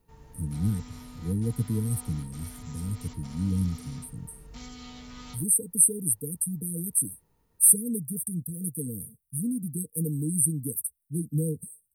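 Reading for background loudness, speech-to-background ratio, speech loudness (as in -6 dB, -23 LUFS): -46.5 LUFS, 20.0 dB, -26.5 LUFS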